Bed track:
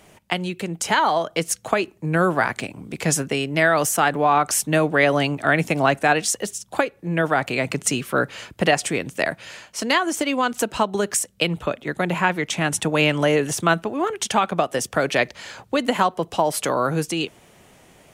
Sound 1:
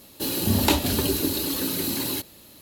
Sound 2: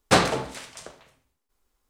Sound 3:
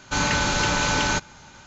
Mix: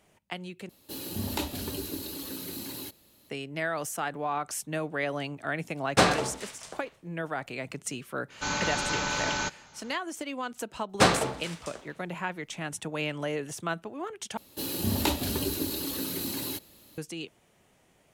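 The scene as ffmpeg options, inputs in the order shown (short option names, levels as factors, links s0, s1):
-filter_complex "[1:a]asplit=2[s0][s1];[2:a]asplit=2[s2][s3];[0:a]volume=0.211[s4];[3:a]lowshelf=f=130:g=-8[s5];[s4]asplit=3[s6][s7][s8];[s6]atrim=end=0.694[s9];[s0]atrim=end=2.61,asetpts=PTS-STARTPTS,volume=0.266[s10];[s7]atrim=start=3.296:end=14.374[s11];[s1]atrim=end=2.61,asetpts=PTS-STARTPTS,volume=0.473[s12];[s8]atrim=start=16.976[s13];[s2]atrim=end=1.89,asetpts=PTS-STARTPTS,volume=0.708,afade=t=in:d=0.004:c=hsin,afade=t=out:st=1.886:d=0.004:c=hsin,adelay=5860[s14];[s5]atrim=end=1.66,asetpts=PTS-STARTPTS,volume=0.447,afade=t=in:d=0.004:c=hsin,afade=t=out:st=1.656:d=0.004:c=hsin,adelay=8300[s15];[s3]atrim=end=1.89,asetpts=PTS-STARTPTS,volume=0.75,afade=t=in:d=0.004:c=hsin,afade=t=out:st=1.886:d=0.004:c=hsin,adelay=10890[s16];[s9][s10]acrossfade=d=0.004:c1=hsin:c2=hsin[s17];[s17][s11]acrossfade=d=0.004:c1=hsin:c2=hsin[s18];[s18][s12]acrossfade=d=0.004:c1=hsin:c2=hsin[s19];[s19][s13]acrossfade=d=0.004:c1=hsin:c2=hsin[s20];[s20][s14][s15][s16]amix=inputs=4:normalize=0"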